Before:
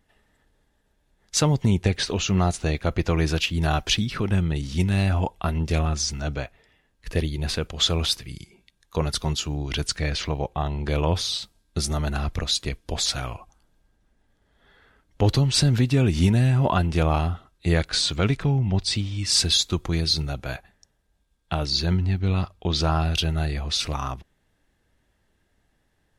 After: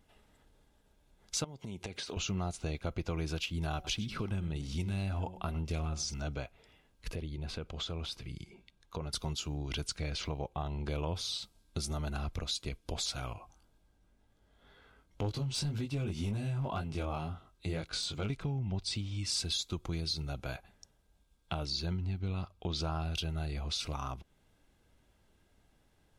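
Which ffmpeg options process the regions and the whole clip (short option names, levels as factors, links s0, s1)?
-filter_complex "[0:a]asettb=1/sr,asplit=3[s0][s1][s2];[s0]atrim=end=1.444[s3];[s1]atrim=start=1.44:end=2.17,asetpts=PTS-STARTPTS,afade=t=in:d=0.004:c=qsin,afade=t=out:st=0.726:d=0.004:c=qsin,highpass=f=210:p=1,acompressor=threshold=0.0251:ratio=12:attack=3.2:release=140:knee=1:detection=peak[s4];[s2]atrim=start=2.166[s5];[s3][s4]acrossfade=d=0.004:c1=hsin:c2=qsin[s6];[s6][s5]acrossfade=d=0.004:c1=qsin:c2=hsin,asettb=1/sr,asplit=3[s7][s8][s9];[s7]atrim=end=3.744[s10];[s8]atrim=start=3.74:end=6.14,asetpts=PTS-STARTPTS,afade=t=in:d=0.004:c=qsin,afade=t=out:st=2.396:d=0.004:c=qsin,bandreject=f=184.8:t=h:w=4,bandreject=f=369.6:t=h:w=4,bandreject=f=554.4:t=h:w=4,bandreject=f=739.2:t=h:w=4,aecho=1:1:102:0.141,atrim=end_sample=105840[s11];[s9]atrim=start=6.136[s12];[s10][s11]acrossfade=d=0.004:c1=hsin:c2=qsin[s13];[s13][s12]acrossfade=d=0.004:c1=qsin:c2=hsin,asettb=1/sr,asplit=3[s14][s15][s16];[s14]atrim=end=7.154[s17];[s15]atrim=start=7.15:end=9.13,asetpts=PTS-STARTPTS,afade=t=in:d=0.004:c=qsin,afade=t=out:st=1.976:d=0.004:c=qsin,lowpass=f=2900:p=1,acompressor=threshold=0.00794:ratio=1.5:attack=3.2:release=140:knee=1:detection=peak[s18];[s16]atrim=start=9.126[s19];[s17][s18]acrossfade=d=0.004:c1=hsin:c2=qsin[s20];[s20][s19]acrossfade=d=0.004:c1=qsin:c2=hsin,asettb=1/sr,asplit=3[s21][s22][s23];[s21]atrim=end=13.334[s24];[s22]atrim=start=13.33:end=18.3,asetpts=PTS-STARTPTS,afade=t=in:d=0.004:c=qsin,afade=t=out:st=4.966:d=0.004:c=qsin,flanger=delay=19:depth=2.9:speed=2,aeval=exprs='clip(val(0),-1,0.133)':c=same[s25];[s23]atrim=start=18.296[s26];[s24][s25]acrossfade=d=0.004:c1=hsin:c2=qsin[s27];[s27][s26]acrossfade=d=0.004:c1=qsin:c2=hsin,bandreject=f=1800:w=5.4,acompressor=threshold=0.0112:ratio=2.5"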